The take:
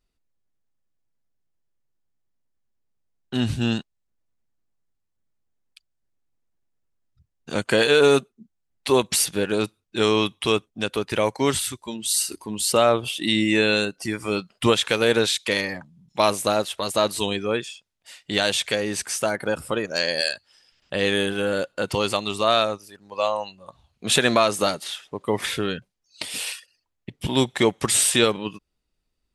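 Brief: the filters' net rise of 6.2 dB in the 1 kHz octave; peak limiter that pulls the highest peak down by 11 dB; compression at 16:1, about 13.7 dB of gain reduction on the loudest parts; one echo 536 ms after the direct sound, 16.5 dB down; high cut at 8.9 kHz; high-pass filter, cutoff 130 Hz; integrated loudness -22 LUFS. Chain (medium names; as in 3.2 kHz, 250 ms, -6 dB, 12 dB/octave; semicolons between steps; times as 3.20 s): high-pass 130 Hz; low-pass 8.9 kHz; peaking EQ 1 kHz +8 dB; compression 16:1, threshold -23 dBFS; peak limiter -18.5 dBFS; delay 536 ms -16.5 dB; trim +9.5 dB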